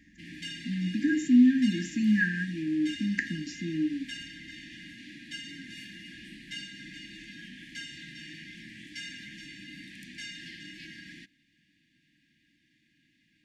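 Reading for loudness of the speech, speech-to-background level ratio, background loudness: −27.0 LKFS, 15.5 dB, −42.5 LKFS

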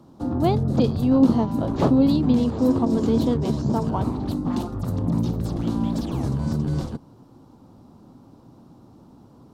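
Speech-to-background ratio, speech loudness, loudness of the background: 3.0 dB, −22.5 LKFS, −25.5 LKFS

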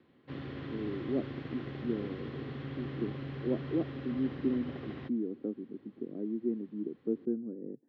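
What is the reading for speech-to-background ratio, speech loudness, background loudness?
4.5 dB, −37.5 LKFS, −42.0 LKFS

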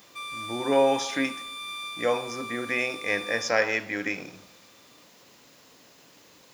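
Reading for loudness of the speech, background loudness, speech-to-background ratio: −27.0 LKFS, −36.5 LKFS, 9.5 dB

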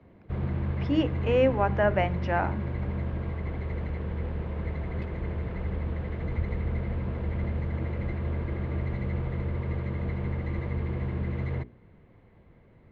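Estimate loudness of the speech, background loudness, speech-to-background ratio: −27.0 LKFS, −32.0 LKFS, 5.0 dB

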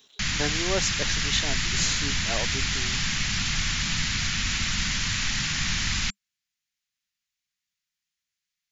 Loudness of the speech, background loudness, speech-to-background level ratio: −30.5 LKFS, −25.5 LKFS, −5.0 dB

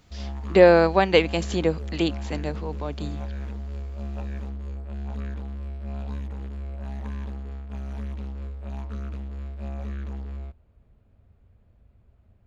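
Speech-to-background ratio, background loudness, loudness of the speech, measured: 14.5 dB, −35.0 LKFS, −20.5 LKFS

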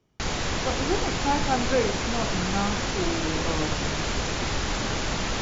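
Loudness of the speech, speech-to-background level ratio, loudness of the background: −30.0 LKFS, −2.5 dB, −27.5 LKFS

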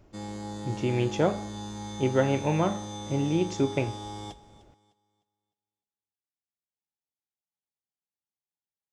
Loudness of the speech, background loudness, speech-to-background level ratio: −28.0 LKFS, −38.0 LKFS, 10.0 dB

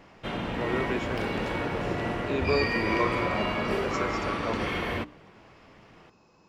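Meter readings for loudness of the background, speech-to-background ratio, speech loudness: −29.5 LKFS, −4.5 dB, −34.0 LKFS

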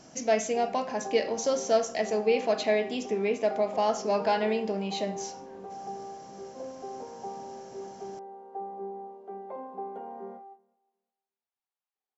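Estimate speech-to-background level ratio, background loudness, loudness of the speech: 13.5 dB, −41.5 LKFS, −28.0 LKFS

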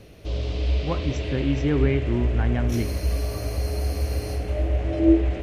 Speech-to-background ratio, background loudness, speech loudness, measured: −0.5 dB, −26.0 LKFS, −26.5 LKFS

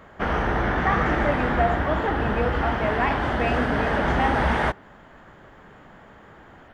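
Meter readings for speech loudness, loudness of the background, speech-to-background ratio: −28.0 LKFS, −24.0 LKFS, −4.0 dB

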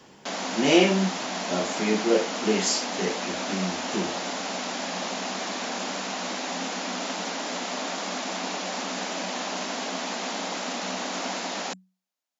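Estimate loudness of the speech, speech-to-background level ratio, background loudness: −26.0 LKFS, 4.5 dB, −30.5 LKFS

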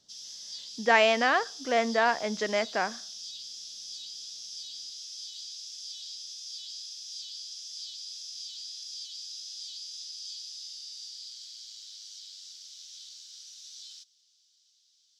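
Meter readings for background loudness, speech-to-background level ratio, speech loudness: −39.5 LKFS, 13.5 dB, −26.0 LKFS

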